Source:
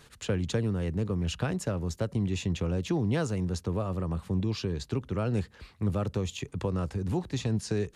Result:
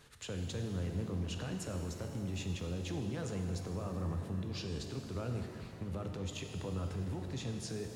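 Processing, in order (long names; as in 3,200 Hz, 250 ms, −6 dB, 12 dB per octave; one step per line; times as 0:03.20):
brickwall limiter −27 dBFS, peak gain reduction 9.5 dB
reverb with rising layers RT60 2.4 s, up +7 semitones, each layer −8 dB, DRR 4 dB
level −6 dB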